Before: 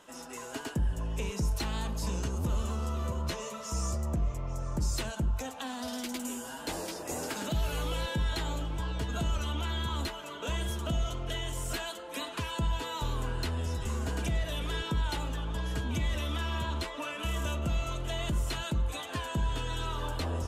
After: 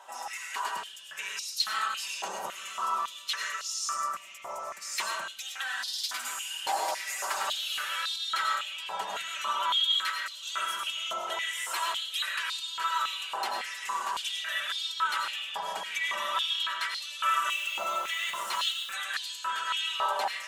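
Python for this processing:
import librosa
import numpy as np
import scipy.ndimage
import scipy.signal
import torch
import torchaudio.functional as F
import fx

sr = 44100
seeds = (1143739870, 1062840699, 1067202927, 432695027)

y = x + 0.69 * np.pad(x, (int(5.2 * sr / 1000.0), 0))[:len(x)]
y = fx.rev_freeverb(y, sr, rt60_s=0.88, hf_ratio=0.6, predelay_ms=60, drr_db=1.0)
y = fx.quant_dither(y, sr, seeds[0], bits=8, dither='none', at=(17.5, 18.94))
y = fx.filter_held_highpass(y, sr, hz=3.6, low_hz=810.0, high_hz=4200.0)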